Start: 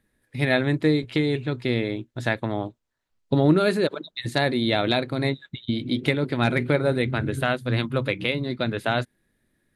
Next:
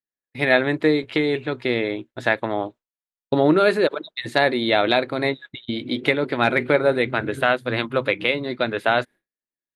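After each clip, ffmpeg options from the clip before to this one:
-af "bass=f=250:g=-14,treble=f=4000:g=-9,agate=range=0.0224:threshold=0.00794:ratio=3:detection=peak,volume=2"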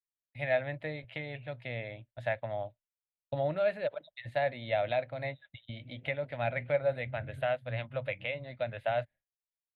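-filter_complex "[0:a]firequalizer=gain_entry='entry(110,0);entry(180,-13);entry(380,-30);entry(580,-3);entry(1100,-20);entry(1900,-10);entry(2800,-9);entry(5400,-22);entry(11000,-16)':delay=0.05:min_phase=1,acrossover=split=120|3600[s0][s1][s2];[s2]acompressor=threshold=0.00126:ratio=6[s3];[s0][s1][s3]amix=inputs=3:normalize=0,volume=0.668"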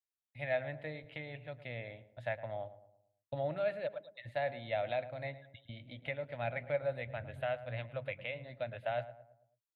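-filter_complex "[0:a]asplit=2[s0][s1];[s1]adelay=110,lowpass=f=1300:p=1,volume=0.224,asplit=2[s2][s3];[s3]adelay=110,lowpass=f=1300:p=1,volume=0.47,asplit=2[s4][s5];[s5]adelay=110,lowpass=f=1300:p=1,volume=0.47,asplit=2[s6][s7];[s7]adelay=110,lowpass=f=1300:p=1,volume=0.47,asplit=2[s8][s9];[s9]adelay=110,lowpass=f=1300:p=1,volume=0.47[s10];[s0][s2][s4][s6][s8][s10]amix=inputs=6:normalize=0,volume=0.562"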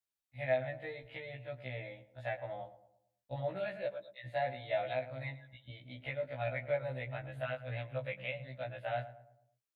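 -af "afftfilt=real='re*1.73*eq(mod(b,3),0)':imag='im*1.73*eq(mod(b,3),0)':win_size=2048:overlap=0.75,volume=1.33"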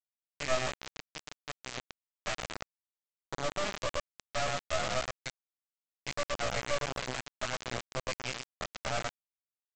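-af "aecho=1:1:114:0.596,aresample=16000,acrusher=bits=3:dc=4:mix=0:aa=0.000001,aresample=44100,volume=1.68"

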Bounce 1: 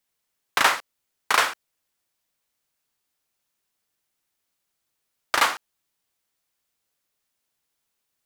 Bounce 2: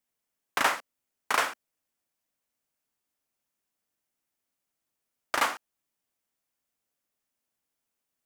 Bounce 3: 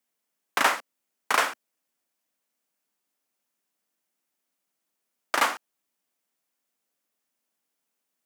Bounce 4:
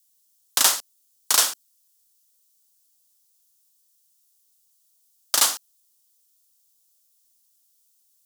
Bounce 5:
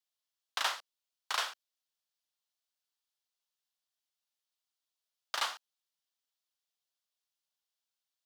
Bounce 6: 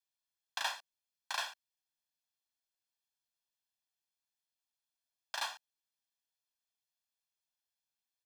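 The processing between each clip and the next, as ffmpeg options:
-af "equalizer=f=250:t=o:w=0.67:g=6,equalizer=f=630:t=o:w=0.67:g=3,equalizer=f=4000:t=o:w=0.67:g=-4,volume=0.501"
-af "highpass=f=160:w=0.5412,highpass=f=160:w=1.3066,volume=1.41"
-af "aexciter=amount=10.3:drive=2.7:freq=3300,volume=0.562"
-filter_complex "[0:a]acrossover=split=550 3800:gain=0.112 1 0.0708[s0][s1][s2];[s0][s1][s2]amix=inputs=3:normalize=0,volume=0.473"
-af "aecho=1:1:1.2:0.83,volume=0.501"

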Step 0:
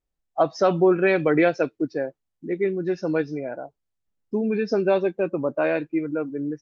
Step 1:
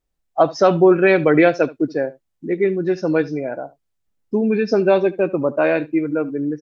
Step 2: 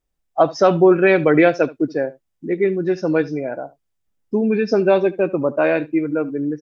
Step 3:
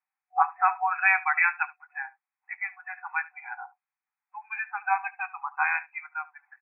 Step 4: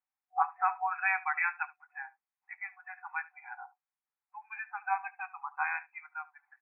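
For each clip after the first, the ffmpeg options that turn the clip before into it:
-af "aecho=1:1:73:0.1,volume=1.88"
-af "bandreject=f=4200:w=17"
-af "afftfilt=real='re*between(b*sr/4096,740,2600)':imag='im*between(b*sr/4096,740,2600)':win_size=4096:overlap=0.75"
-af "lowpass=f=1900:p=1,volume=0.562"

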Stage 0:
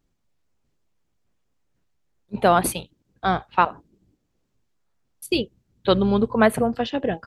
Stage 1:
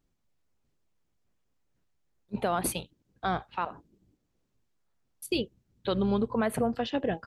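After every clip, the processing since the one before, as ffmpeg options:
-af "alimiter=limit=0.188:level=0:latency=1:release=108,volume=0.631"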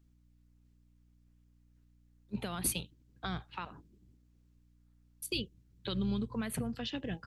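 -filter_complex "[0:a]equalizer=f=660:t=o:w=1.2:g=-7.5,acrossover=split=180|2400[s0][s1][s2];[s1]acompressor=threshold=0.0112:ratio=6[s3];[s0][s3][s2]amix=inputs=3:normalize=0,aeval=exprs='val(0)+0.000562*(sin(2*PI*60*n/s)+sin(2*PI*2*60*n/s)/2+sin(2*PI*3*60*n/s)/3+sin(2*PI*4*60*n/s)/4+sin(2*PI*5*60*n/s)/5)':c=same"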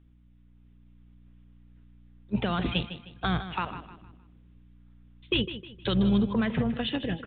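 -af "dynaudnorm=f=210:g=7:m=1.5,aresample=8000,asoftclip=type=tanh:threshold=0.0631,aresample=44100,aecho=1:1:155|310|465|620:0.251|0.0904|0.0326|0.0117,volume=2.51"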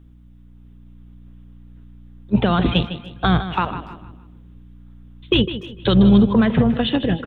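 -filter_complex "[0:a]equalizer=f=2300:t=o:w=1.1:g=-6,acontrast=49,asplit=2[s0][s1];[s1]adelay=290,highpass=300,lowpass=3400,asoftclip=type=hard:threshold=0.1,volume=0.0794[s2];[s0][s2]amix=inputs=2:normalize=0,volume=1.88"

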